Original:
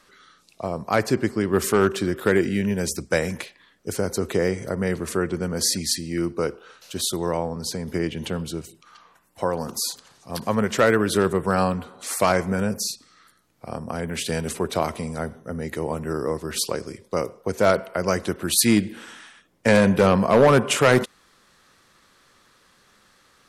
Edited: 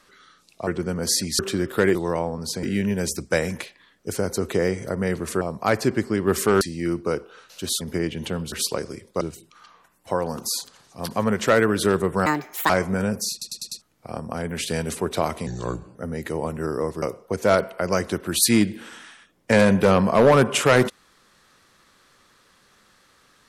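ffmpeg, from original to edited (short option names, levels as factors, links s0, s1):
-filter_complex "[0:a]asplit=20[s0][s1][s2][s3][s4][s5][s6][s7][s8][s9][s10][s11][s12][s13][s14][s15][s16][s17][s18][s19];[s0]atrim=end=0.672[s20];[s1]atrim=start=5.208:end=5.932[s21];[s2]atrim=start=1.868:end=2.432[s22];[s3]atrim=start=7.128:end=7.812[s23];[s4]atrim=start=2.428:end=5.212[s24];[s5]atrim=start=0.668:end=1.872[s25];[s6]atrim=start=5.928:end=7.132[s26];[s7]atrim=start=7.808:end=8.522[s27];[s8]atrim=start=16.488:end=17.182[s28];[s9]atrim=start=8.518:end=11.574[s29];[s10]atrim=start=11.57:end=12.28,asetpts=PTS-STARTPTS,asetrate=71883,aresample=44100,atrim=end_sample=19209,asetpts=PTS-STARTPTS[s30];[s11]atrim=start=12.276:end=13.002[s31];[s12]atrim=start=12.898:end=13.002[s32];[s13]atrim=start=12.898:end=13.002[s33];[s14]atrim=start=12.898:end=13.002[s34];[s15]atrim=start=12.898:end=13.002[s35];[s16]atrim=start=13.398:end=15.054[s36];[s17]atrim=start=15.05:end=15.42,asetpts=PTS-STARTPTS,asetrate=33516,aresample=44100[s37];[s18]atrim=start=15.416:end=16.492[s38];[s19]atrim=start=17.178[s39];[s20][s21]acrossfade=d=0.004:c1=hsin:c2=hsin[s40];[s40][s22]acrossfade=d=0.004:c1=hsin:c2=hsin[s41];[s41][s23]acrossfade=d=0.004:c1=hsin:c2=hsin[s42];[s42][s24]acrossfade=d=0.004:c1=hsin:c2=hsin[s43];[s43][s25]acrossfade=d=0.004:c1=hsin:c2=hsin[s44];[s44][s26]acrossfade=d=0.004:c1=hsin:c2=hsin[s45];[s45][s27]acrossfade=d=0.004:c1=hsin:c2=hsin[s46];[s46][s28]acrossfade=d=0.004:c1=hsin:c2=hsin[s47];[s47][s29]acrossfade=d=0.004:c1=hsin:c2=hsin[s48];[s48][s30]acrossfade=d=0.004:c1=hsin:c2=hsin[s49];[s49][s31]acrossfade=d=0.004:c1=hsin:c2=hsin[s50];[s50][s32]acrossfade=d=0.004:c1=hsin:c2=hsin[s51];[s51][s33]acrossfade=d=0.004:c1=hsin:c2=hsin[s52];[s52][s34]acrossfade=d=0.004:c1=hsin:c2=hsin[s53];[s53][s35]acrossfade=d=0.004:c1=hsin:c2=hsin[s54];[s54][s36]acrossfade=d=0.004:c1=hsin:c2=hsin[s55];[s55][s37]acrossfade=d=0.004:c1=hsin:c2=hsin[s56];[s56][s38]acrossfade=d=0.004:c1=hsin:c2=hsin[s57];[s57][s39]acrossfade=d=0.004:c1=hsin:c2=hsin"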